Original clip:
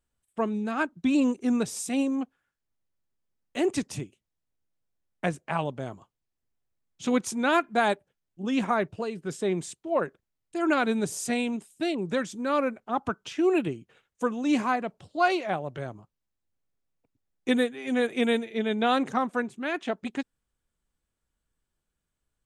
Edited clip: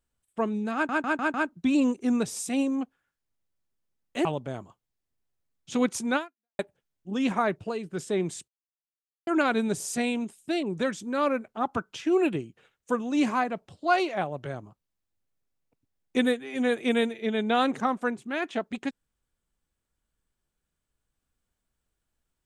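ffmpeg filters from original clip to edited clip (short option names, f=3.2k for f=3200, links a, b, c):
-filter_complex "[0:a]asplit=9[a][b][c][d][e][f][g][h][i];[a]atrim=end=0.892[j];[b]atrim=start=0.738:end=0.892[k];[c]atrim=start=0.738:end=0.892[l];[d]atrim=start=0.738:end=0.892[m];[e]atrim=start=0.738:end=3.652[n];[f]atrim=start=5.568:end=7.91,asetpts=PTS-STARTPTS,afade=t=out:st=1.912:d=0.43:c=exp[o];[g]atrim=start=7.91:end=9.8,asetpts=PTS-STARTPTS,afade=t=in:d=0.004:c=hsin,afade=t=out:st=1.886:d=0.004:c=hsin[p];[h]atrim=start=9.8:end=10.59,asetpts=PTS-STARTPTS,volume=0[q];[i]atrim=start=10.59,asetpts=PTS-STARTPTS,afade=t=in:d=0.004:c=hsin[r];[j][k]acrossfade=d=0.004:c1=hsin:c2=hsin[s];[s][l]acrossfade=d=0.004:c1=hsin:c2=hsin[t];[t][m]acrossfade=d=0.004:c1=hsin:c2=hsin[u];[u][n]acrossfade=d=0.004:c1=hsin:c2=hsin[v];[o][p][q][r]concat=n=4:v=0:a=1[w];[v][w]acrossfade=d=0.004:c1=hsin:c2=hsin"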